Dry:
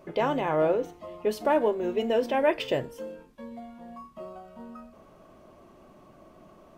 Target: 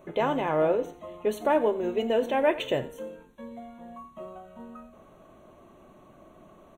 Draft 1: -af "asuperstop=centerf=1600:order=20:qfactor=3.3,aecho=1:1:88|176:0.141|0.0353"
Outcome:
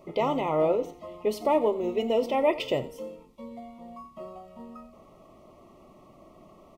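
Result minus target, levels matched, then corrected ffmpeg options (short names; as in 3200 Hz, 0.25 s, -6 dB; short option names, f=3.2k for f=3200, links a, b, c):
2000 Hz band -4.0 dB
-af "asuperstop=centerf=5000:order=20:qfactor=3.3,aecho=1:1:88|176:0.141|0.0353"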